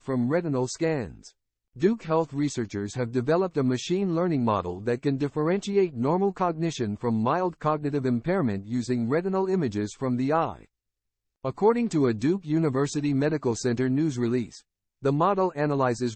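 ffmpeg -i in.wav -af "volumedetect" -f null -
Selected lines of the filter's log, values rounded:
mean_volume: -25.9 dB
max_volume: -9.6 dB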